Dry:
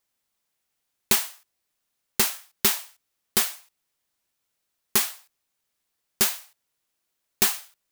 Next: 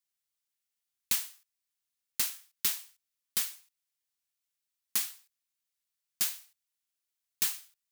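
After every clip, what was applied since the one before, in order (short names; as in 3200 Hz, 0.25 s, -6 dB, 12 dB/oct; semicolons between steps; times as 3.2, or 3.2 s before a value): passive tone stack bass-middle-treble 5-5-5; gain -2 dB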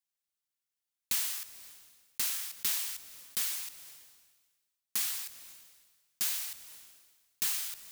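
sustainer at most 41 dB/s; gain -3.5 dB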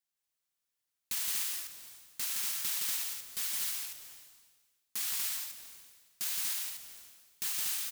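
limiter -24 dBFS, peak gain reduction 7 dB; loudspeakers at several distances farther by 57 m -3 dB, 82 m -3 dB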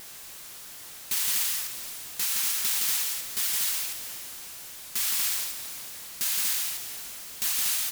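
zero-crossing step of -42.5 dBFS; vibrato 5.3 Hz 44 cents; gain +6.5 dB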